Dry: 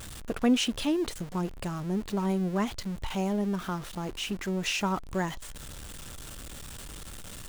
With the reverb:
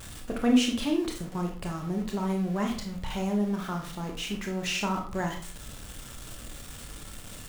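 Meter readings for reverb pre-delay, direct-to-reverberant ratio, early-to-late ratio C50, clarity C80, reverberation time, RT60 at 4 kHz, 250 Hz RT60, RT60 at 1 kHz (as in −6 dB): 24 ms, 1.5 dB, 7.0 dB, 12.0 dB, 0.45 s, 0.35 s, 0.60 s, 0.40 s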